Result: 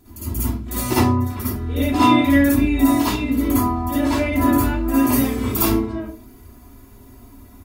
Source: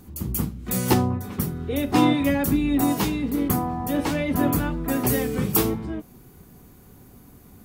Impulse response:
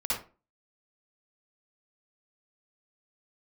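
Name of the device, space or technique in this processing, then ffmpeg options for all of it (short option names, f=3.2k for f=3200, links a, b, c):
microphone above a desk: -filter_complex "[0:a]aecho=1:1:3:0.78[a];[1:a]atrim=start_sample=2205[b];[a][b]afir=irnorm=-1:irlink=0,volume=-4dB"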